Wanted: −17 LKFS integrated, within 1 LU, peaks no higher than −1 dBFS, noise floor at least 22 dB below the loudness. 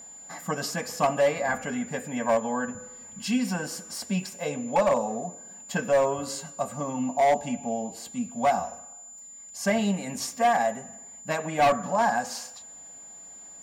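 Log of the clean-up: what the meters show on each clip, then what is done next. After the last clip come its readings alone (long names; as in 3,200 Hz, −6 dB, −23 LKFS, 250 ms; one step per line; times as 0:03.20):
share of clipped samples 1.3%; peaks flattened at −16.5 dBFS; interfering tone 7,100 Hz; level of the tone −43 dBFS; integrated loudness −27.5 LKFS; sample peak −16.5 dBFS; target loudness −17.0 LKFS
→ clipped peaks rebuilt −16.5 dBFS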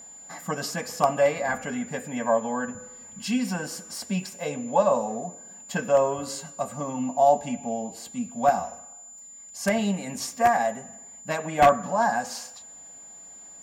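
share of clipped samples 0.0%; interfering tone 7,100 Hz; level of the tone −43 dBFS
→ notch filter 7,100 Hz, Q 30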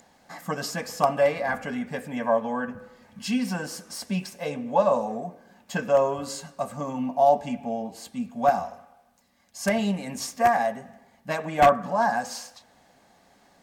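interfering tone none found; integrated loudness −26.0 LKFS; sample peak −7.5 dBFS; target loudness −17.0 LKFS
→ level +9 dB
brickwall limiter −1 dBFS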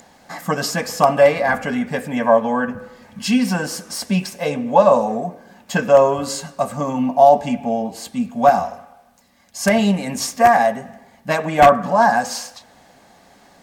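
integrated loudness −17.5 LKFS; sample peak −1.0 dBFS; background noise floor −52 dBFS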